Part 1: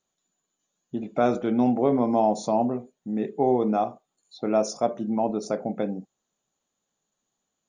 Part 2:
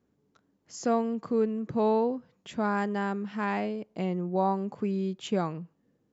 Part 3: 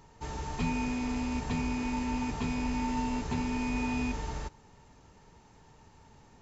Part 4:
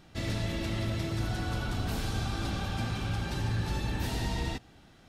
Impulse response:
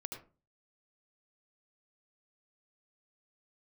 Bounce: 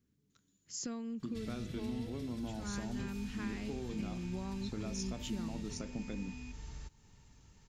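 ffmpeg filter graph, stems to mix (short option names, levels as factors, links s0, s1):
-filter_complex "[0:a]adelay=300,volume=1.06[s0];[1:a]volume=1.19[s1];[2:a]adelay=2400,volume=1[s2];[3:a]adelay=1200,volume=0.531[s3];[s0][s1]amix=inputs=2:normalize=0,equalizer=f=730:t=o:w=1:g=-6.5,acompressor=threshold=0.0316:ratio=6,volume=1[s4];[s2][s3]amix=inputs=2:normalize=0,acompressor=threshold=0.00631:ratio=2.5,volume=1[s5];[s4][s5]amix=inputs=2:normalize=0,equalizer=f=680:t=o:w=2.7:g=-14.5"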